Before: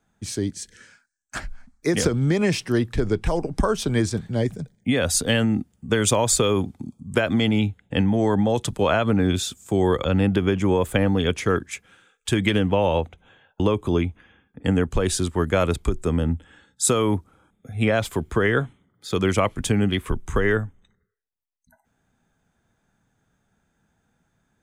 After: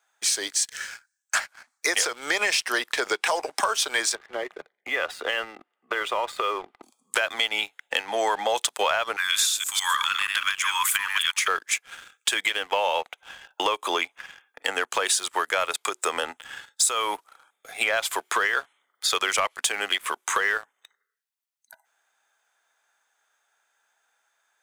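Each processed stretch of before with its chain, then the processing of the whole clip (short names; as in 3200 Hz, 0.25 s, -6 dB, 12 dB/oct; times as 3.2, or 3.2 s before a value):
4.15–6.83 compressor 10:1, threshold -26 dBFS + air absorption 500 m + small resonant body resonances 360/1200/2000/2800 Hz, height 8 dB, ringing for 30 ms
9.16–11.48 reverse delay 0.159 s, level -5 dB + steep high-pass 1000 Hz 72 dB/oct + high shelf 8400 Hz +8.5 dB
whole clip: Bessel high-pass 1000 Hz, order 4; compressor 6:1, threshold -37 dBFS; sample leveller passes 2; gain +9 dB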